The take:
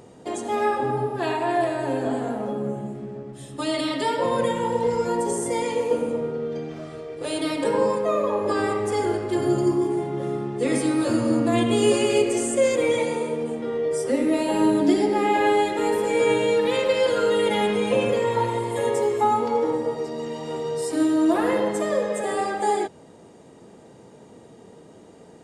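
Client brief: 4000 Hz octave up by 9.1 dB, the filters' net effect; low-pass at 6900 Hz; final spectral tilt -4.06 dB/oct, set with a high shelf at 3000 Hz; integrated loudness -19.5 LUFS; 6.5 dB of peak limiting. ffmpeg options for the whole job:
-af "lowpass=6.9k,highshelf=f=3k:g=5,equalizer=f=4k:t=o:g=8.5,volume=4dB,alimiter=limit=-9.5dB:level=0:latency=1"

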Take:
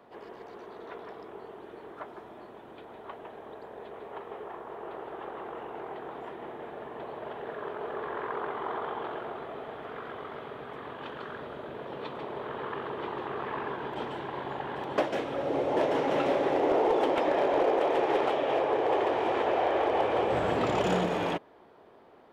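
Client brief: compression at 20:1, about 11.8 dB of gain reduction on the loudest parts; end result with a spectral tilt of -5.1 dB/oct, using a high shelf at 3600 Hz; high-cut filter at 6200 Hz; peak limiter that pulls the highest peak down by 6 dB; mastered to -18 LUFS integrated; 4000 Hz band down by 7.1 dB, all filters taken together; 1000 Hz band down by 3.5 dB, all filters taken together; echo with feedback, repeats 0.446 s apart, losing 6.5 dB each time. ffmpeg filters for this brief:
-af "lowpass=6.2k,equalizer=f=1k:t=o:g=-4,highshelf=f=3.6k:g=-8,equalizer=f=4k:t=o:g=-4.5,acompressor=threshold=-35dB:ratio=20,alimiter=level_in=8dB:limit=-24dB:level=0:latency=1,volume=-8dB,aecho=1:1:446|892|1338|1784|2230|2676:0.473|0.222|0.105|0.0491|0.0231|0.0109,volume=23dB"

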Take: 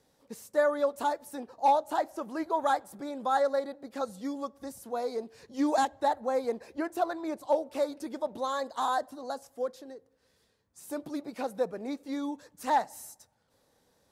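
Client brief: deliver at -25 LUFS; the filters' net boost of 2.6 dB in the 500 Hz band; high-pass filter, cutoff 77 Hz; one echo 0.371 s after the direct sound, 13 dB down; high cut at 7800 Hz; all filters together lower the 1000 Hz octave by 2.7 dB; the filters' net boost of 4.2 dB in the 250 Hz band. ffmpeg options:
-af "highpass=77,lowpass=7.8k,equalizer=f=250:t=o:g=4,equalizer=f=500:t=o:g=4,equalizer=f=1k:t=o:g=-5.5,aecho=1:1:371:0.224,volume=5dB"

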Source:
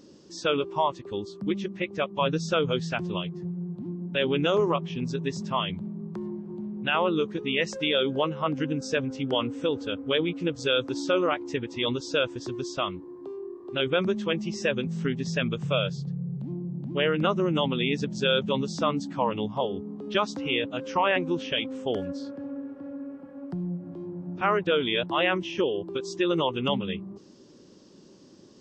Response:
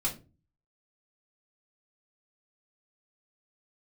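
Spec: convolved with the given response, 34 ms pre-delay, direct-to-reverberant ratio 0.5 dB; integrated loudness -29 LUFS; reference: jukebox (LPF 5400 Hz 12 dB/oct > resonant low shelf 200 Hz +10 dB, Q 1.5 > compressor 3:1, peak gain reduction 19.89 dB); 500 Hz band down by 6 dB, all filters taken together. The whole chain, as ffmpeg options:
-filter_complex "[0:a]equalizer=f=500:t=o:g=-5.5,asplit=2[a][b];[1:a]atrim=start_sample=2205,adelay=34[c];[b][c]afir=irnorm=-1:irlink=0,volume=-5.5dB[d];[a][d]amix=inputs=2:normalize=0,lowpass=5.4k,lowshelf=f=200:t=q:w=1.5:g=10,acompressor=threshold=-36dB:ratio=3,volume=6dB"

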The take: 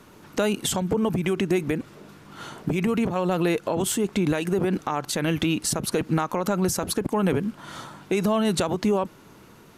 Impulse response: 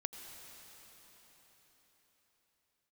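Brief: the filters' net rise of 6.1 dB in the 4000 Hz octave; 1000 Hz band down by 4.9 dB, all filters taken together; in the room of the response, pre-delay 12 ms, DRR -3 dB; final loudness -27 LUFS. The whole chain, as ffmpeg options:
-filter_complex "[0:a]equalizer=f=1k:t=o:g=-7,equalizer=f=4k:t=o:g=8,asplit=2[a][b];[1:a]atrim=start_sample=2205,adelay=12[c];[b][c]afir=irnorm=-1:irlink=0,volume=4dB[d];[a][d]amix=inputs=2:normalize=0,volume=-6.5dB"

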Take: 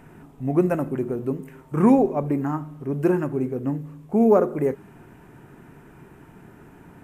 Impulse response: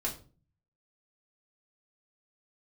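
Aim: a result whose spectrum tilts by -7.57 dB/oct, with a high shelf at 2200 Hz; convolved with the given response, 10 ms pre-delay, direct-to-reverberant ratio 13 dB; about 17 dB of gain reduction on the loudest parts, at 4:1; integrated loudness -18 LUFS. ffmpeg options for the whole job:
-filter_complex "[0:a]highshelf=f=2.2k:g=-4.5,acompressor=threshold=-33dB:ratio=4,asplit=2[a][b];[1:a]atrim=start_sample=2205,adelay=10[c];[b][c]afir=irnorm=-1:irlink=0,volume=-16.5dB[d];[a][d]amix=inputs=2:normalize=0,volume=17.5dB"

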